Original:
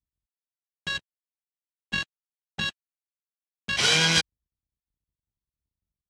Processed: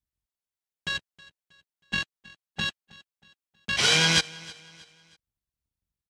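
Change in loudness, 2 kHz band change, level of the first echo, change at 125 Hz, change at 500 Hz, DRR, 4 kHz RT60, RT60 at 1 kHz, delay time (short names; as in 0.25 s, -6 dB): -0.5 dB, 0.0 dB, -21.5 dB, 0.0 dB, 0.0 dB, none, none, none, 0.318 s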